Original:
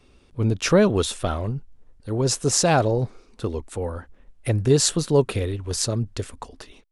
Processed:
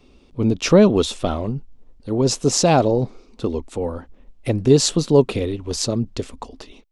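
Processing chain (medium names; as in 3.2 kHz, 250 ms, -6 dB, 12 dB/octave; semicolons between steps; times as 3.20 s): fifteen-band graphic EQ 100 Hz -7 dB, 250 Hz +4 dB, 1.6 kHz -8 dB, 10 kHz -11 dB; trim +4 dB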